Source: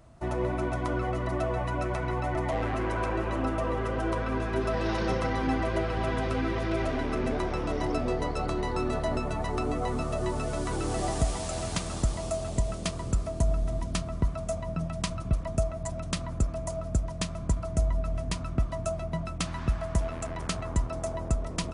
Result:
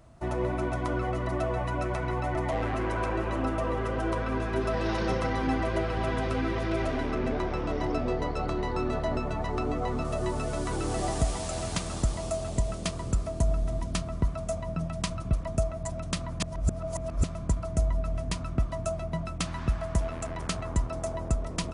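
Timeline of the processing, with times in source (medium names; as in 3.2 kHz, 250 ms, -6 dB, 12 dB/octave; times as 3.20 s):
7.11–10.05 s: distance through air 69 m
16.40–17.24 s: reverse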